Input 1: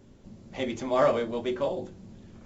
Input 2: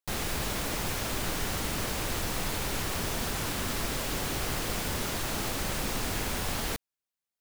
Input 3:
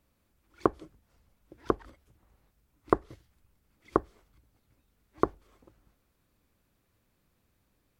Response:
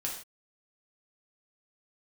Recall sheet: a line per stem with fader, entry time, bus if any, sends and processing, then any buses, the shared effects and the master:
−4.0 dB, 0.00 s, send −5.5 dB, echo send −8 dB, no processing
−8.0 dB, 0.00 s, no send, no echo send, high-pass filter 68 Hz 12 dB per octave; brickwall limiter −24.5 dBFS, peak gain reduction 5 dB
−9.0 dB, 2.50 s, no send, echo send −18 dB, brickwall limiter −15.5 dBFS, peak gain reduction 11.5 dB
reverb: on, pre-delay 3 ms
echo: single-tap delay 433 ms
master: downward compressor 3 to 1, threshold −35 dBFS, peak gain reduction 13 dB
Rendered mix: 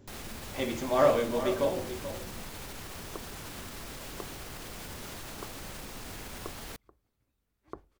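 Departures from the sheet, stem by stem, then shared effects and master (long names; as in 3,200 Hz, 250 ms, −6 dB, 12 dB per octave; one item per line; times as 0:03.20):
stem 2: missing high-pass filter 68 Hz 12 dB per octave
master: missing downward compressor 3 to 1, threshold −35 dBFS, peak gain reduction 13 dB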